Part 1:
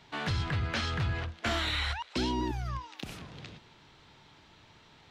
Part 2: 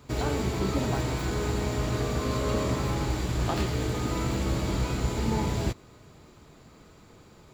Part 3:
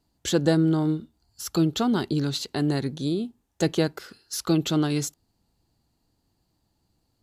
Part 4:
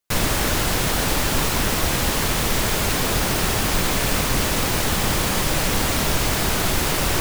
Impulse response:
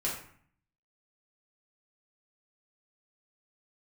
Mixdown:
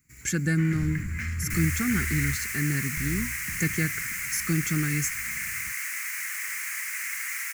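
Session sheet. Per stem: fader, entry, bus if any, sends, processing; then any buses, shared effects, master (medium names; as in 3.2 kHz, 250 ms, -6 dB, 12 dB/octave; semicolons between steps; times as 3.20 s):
-17.0 dB, 0.45 s, muted 2.35–2.97 s, send -9 dB, bass shelf 210 Hz +11 dB; sine folder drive 8 dB, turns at -14 dBFS
-7.5 dB, 0.00 s, no send, pre-emphasis filter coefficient 0.8
+2.0 dB, 0.00 s, no send, comb of notches 970 Hz
-10.0 dB, 1.40 s, no send, inverse Chebyshev high-pass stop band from 300 Hz, stop band 60 dB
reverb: on, RT60 0.55 s, pre-delay 4 ms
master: FFT filter 190 Hz 0 dB, 700 Hz -26 dB, 2.1 kHz +11 dB, 3.5 kHz -19 dB, 6.4 kHz +2 dB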